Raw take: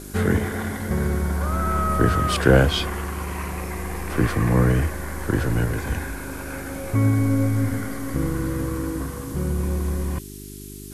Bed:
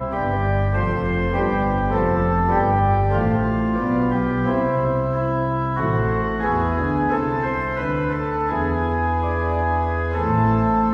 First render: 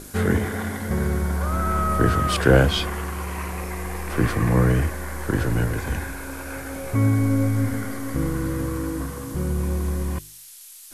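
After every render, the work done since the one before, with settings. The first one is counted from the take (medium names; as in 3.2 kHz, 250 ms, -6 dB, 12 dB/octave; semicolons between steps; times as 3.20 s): de-hum 50 Hz, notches 8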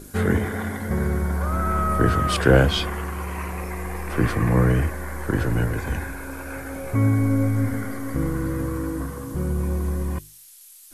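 noise reduction 6 dB, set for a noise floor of -44 dBFS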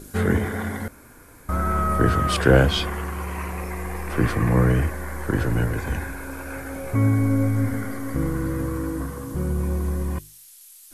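0.88–1.49 s: room tone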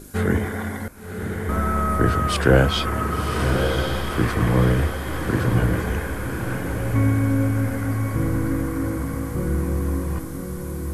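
echo that smears into a reverb 1096 ms, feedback 43%, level -4.5 dB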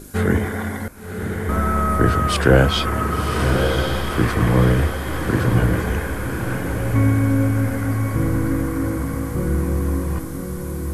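trim +2.5 dB; peak limiter -2 dBFS, peak gain reduction 1 dB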